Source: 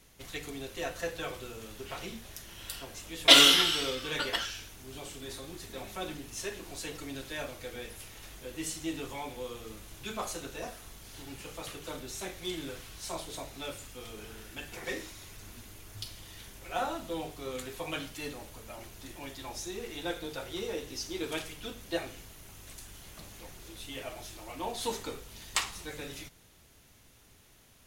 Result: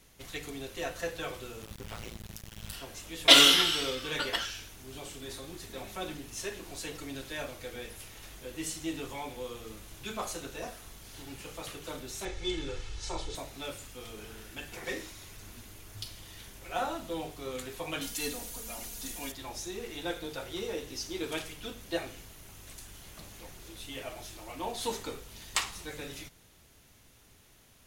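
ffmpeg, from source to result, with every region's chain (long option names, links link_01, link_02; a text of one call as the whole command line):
ffmpeg -i in.wav -filter_complex "[0:a]asettb=1/sr,asplit=3[link_01][link_02][link_03];[link_01]atrim=end=1.624[link_04];[link_02]atrim=start=1.62:end=2.73,asetpts=PTS-STARTPTS,afade=type=in:duration=0.004:curve=qsin,afade=type=out:start_time=1.106:duration=0.004:curve=qsin,lowshelf=frequency=130:width_type=q:width=3:gain=7.5,tremolo=f=110:d=0.889,acrusher=bits=6:mix=0:aa=0.5[link_05];[link_03]atrim=start=2.726[link_06];[link_04][link_05]acrossfade=duration=0.004:curve1=hsin:curve2=qsin[link_07];[link_07][link_06]acrossfade=duration=0.004:curve1=qsin:curve2=hsin,asettb=1/sr,asplit=3[link_08][link_09][link_10];[link_08]atrim=end=12.254[link_11];[link_09]atrim=start=12.25:end=13.35,asetpts=PTS-STARTPTS,afade=type=in:duration=0.004:curve=qsin,afade=type=out:start_time=1.096:duration=0.004:curve=qsin,lowpass=frequency=7500:width=0.5412,lowpass=frequency=7500:width=1.3066,lowshelf=frequency=71:gain=11,aecho=1:1:2.3:0.61,atrim=end_sample=48510[link_12];[link_10]atrim=start=13.346[link_13];[link_11][link_12]acrossfade=duration=0.004:curve1=hsin:curve2=qsin[link_14];[link_14][link_13]acrossfade=duration=0.004:curve1=qsin:curve2=hsin,asettb=1/sr,asplit=3[link_15][link_16][link_17];[link_15]atrim=end=18.014[link_18];[link_16]atrim=start=18.01:end=19.32,asetpts=PTS-STARTPTS,afade=type=in:duration=0.004:curve=qsin,afade=type=out:start_time=1.306:duration=0.004:curve=qsin,bass=frequency=250:gain=1,treble=frequency=4000:gain=11,aecho=1:1:4.2:0.61,atrim=end_sample=57771[link_19];[link_17]atrim=start=19.316[link_20];[link_18][link_19]acrossfade=duration=0.004:curve1=hsin:curve2=qsin[link_21];[link_21][link_20]acrossfade=duration=0.004:curve1=qsin:curve2=hsin" out.wav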